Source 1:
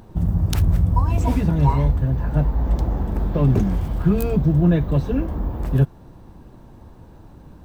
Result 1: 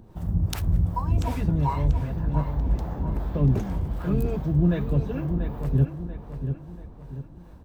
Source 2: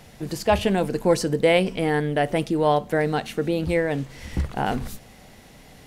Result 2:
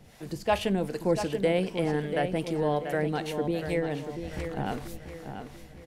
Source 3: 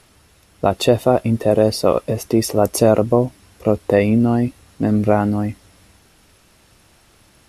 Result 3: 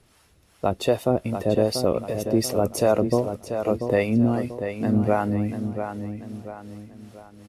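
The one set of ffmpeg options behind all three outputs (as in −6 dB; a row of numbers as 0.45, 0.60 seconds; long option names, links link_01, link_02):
-filter_complex "[0:a]acrossover=split=480[link_01][link_02];[link_01]aeval=exprs='val(0)*(1-0.7/2+0.7/2*cos(2*PI*2.6*n/s))':channel_layout=same[link_03];[link_02]aeval=exprs='val(0)*(1-0.7/2-0.7/2*cos(2*PI*2.6*n/s))':channel_layout=same[link_04];[link_03][link_04]amix=inputs=2:normalize=0,asplit=2[link_05][link_06];[link_06]adelay=688,lowpass=frequency=4500:poles=1,volume=-8dB,asplit=2[link_07][link_08];[link_08]adelay=688,lowpass=frequency=4500:poles=1,volume=0.42,asplit=2[link_09][link_10];[link_10]adelay=688,lowpass=frequency=4500:poles=1,volume=0.42,asplit=2[link_11][link_12];[link_12]adelay=688,lowpass=frequency=4500:poles=1,volume=0.42,asplit=2[link_13][link_14];[link_14]adelay=688,lowpass=frequency=4500:poles=1,volume=0.42[link_15];[link_05][link_07][link_09][link_11][link_13][link_15]amix=inputs=6:normalize=0,volume=-3dB"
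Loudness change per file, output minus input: −5.5, −6.0, −6.0 LU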